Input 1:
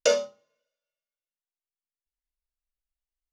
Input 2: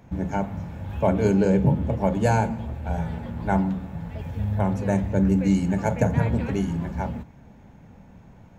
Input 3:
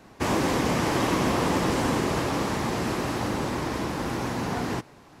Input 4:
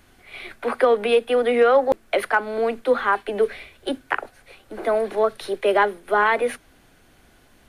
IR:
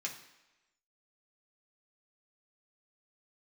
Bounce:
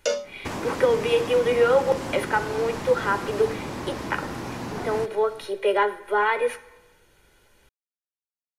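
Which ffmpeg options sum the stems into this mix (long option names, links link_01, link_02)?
-filter_complex "[0:a]volume=-3dB[link_01];[2:a]acompressor=threshold=-30dB:ratio=5,adelay=250,volume=0.5dB[link_02];[3:a]aecho=1:1:2.1:0.57,volume=-8dB,asplit=2[link_03][link_04];[link_04]volume=-3dB[link_05];[4:a]atrim=start_sample=2205[link_06];[link_05][link_06]afir=irnorm=-1:irlink=0[link_07];[link_01][link_02][link_03][link_07]amix=inputs=4:normalize=0"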